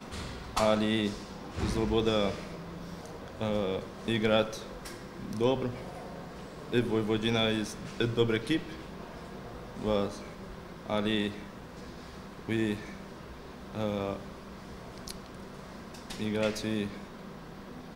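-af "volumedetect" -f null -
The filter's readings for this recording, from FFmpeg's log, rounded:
mean_volume: -33.0 dB
max_volume: -11.2 dB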